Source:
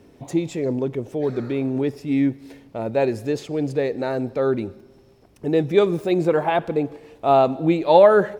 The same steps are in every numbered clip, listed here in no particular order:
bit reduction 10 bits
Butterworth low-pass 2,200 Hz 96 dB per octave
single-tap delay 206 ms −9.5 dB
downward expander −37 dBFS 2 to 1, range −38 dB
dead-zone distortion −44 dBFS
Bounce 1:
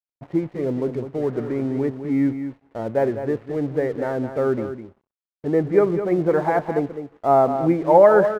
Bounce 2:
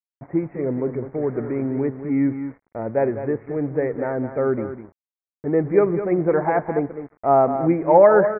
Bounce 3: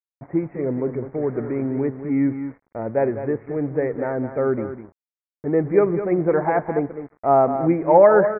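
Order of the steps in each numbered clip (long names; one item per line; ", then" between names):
bit reduction, then Butterworth low-pass, then dead-zone distortion, then downward expander, then single-tap delay
downward expander, then single-tap delay, then dead-zone distortion, then bit reduction, then Butterworth low-pass
downward expander, then single-tap delay, then bit reduction, then dead-zone distortion, then Butterworth low-pass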